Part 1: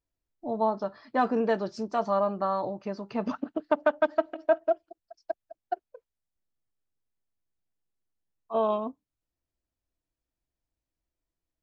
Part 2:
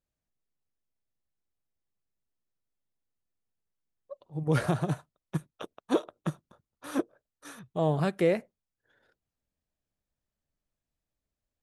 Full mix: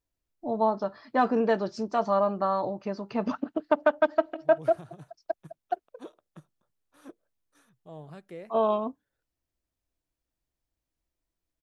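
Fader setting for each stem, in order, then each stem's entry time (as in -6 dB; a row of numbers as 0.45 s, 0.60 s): +1.5 dB, -18.0 dB; 0.00 s, 0.10 s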